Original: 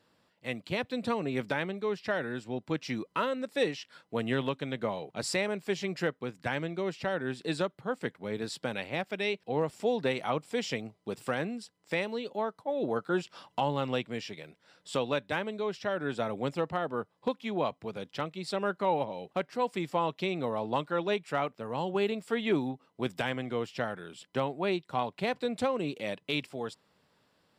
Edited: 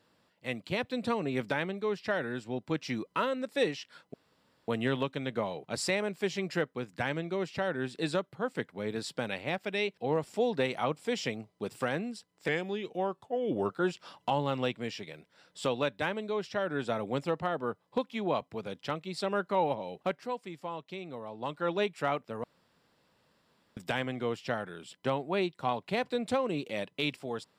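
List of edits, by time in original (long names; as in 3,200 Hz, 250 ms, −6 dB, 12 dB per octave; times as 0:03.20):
0:04.14: splice in room tone 0.54 s
0:11.94–0:13.00: play speed 87%
0:19.39–0:21.00: duck −9.5 dB, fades 0.32 s
0:21.74–0:23.07: fill with room tone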